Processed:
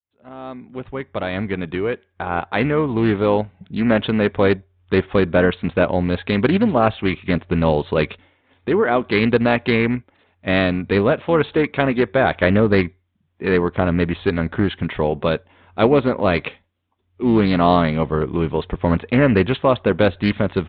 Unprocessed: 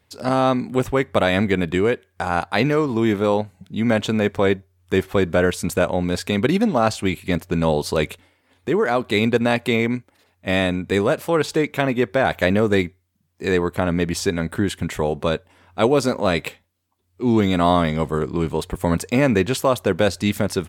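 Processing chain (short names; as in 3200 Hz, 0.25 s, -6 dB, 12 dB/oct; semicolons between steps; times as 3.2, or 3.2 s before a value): opening faded in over 3.37 s; downsampling 8000 Hz; harmoniser -12 st -16 dB; Doppler distortion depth 0.22 ms; gain +2 dB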